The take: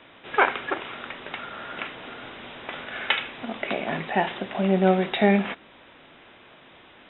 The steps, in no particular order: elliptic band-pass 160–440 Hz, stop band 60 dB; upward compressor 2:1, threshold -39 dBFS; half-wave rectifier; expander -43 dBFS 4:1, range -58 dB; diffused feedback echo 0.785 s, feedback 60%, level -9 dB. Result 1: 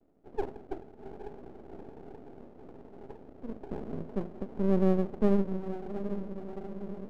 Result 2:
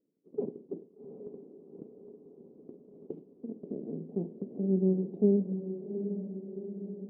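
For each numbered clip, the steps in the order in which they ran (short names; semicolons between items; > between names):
elliptic band-pass > upward compressor > diffused feedback echo > expander > half-wave rectifier; half-wave rectifier > elliptic band-pass > expander > upward compressor > diffused feedback echo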